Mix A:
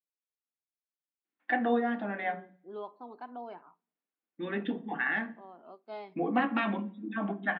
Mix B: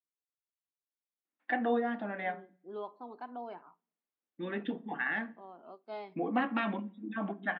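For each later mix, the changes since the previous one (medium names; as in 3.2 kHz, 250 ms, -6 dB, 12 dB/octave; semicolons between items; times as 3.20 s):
first voice: send -7.0 dB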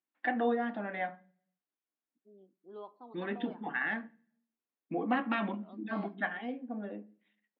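first voice: entry -1.25 s; second voice -5.5 dB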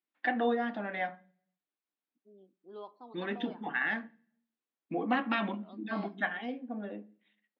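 master: remove distance through air 240 m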